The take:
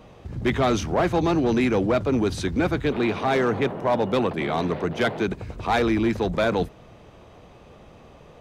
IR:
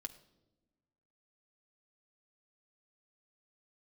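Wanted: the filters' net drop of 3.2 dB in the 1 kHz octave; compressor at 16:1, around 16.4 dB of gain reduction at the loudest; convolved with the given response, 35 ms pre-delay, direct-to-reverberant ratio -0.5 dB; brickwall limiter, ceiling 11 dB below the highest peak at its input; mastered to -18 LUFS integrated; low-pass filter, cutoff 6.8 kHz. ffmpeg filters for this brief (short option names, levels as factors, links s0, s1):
-filter_complex "[0:a]lowpass=6800,equalizer=f=1000:t=o:g=-4.5,acompressor=threshold=0.0178:ratio=16,alimiter=level_in=3.55:limit=0.0631:level=0:latency=1,volume=0.282,asplit=2[s0][s1];[1:a]atrim=start_sample=2205,adelay=35[s2];[s1][s2]afir=irnorm=-1:irlink=0,volume=1.58[s3];[s0][s3]amix=inputs=2:normalize=0,volume=12.6"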